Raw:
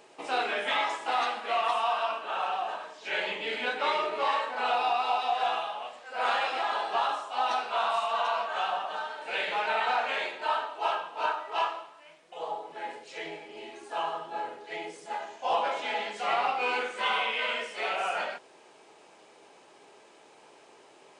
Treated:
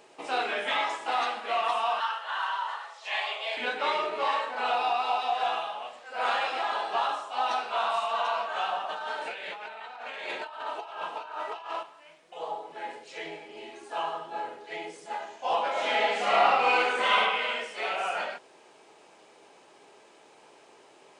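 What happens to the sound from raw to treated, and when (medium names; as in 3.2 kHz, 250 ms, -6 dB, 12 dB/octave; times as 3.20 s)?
2.00–3.57 s: frequency shift +220 Hz
8.89–11.83 s: compressor with a negative ratio -38 dBFS
15.71–17.19 s: reverb throw, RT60 0.9 s, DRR -5 dB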